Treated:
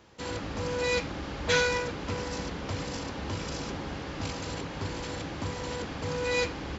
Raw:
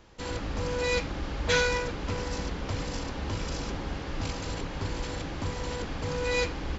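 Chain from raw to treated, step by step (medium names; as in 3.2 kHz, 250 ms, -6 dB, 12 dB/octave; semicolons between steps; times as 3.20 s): high-pass 81 Hz 12 dB/octave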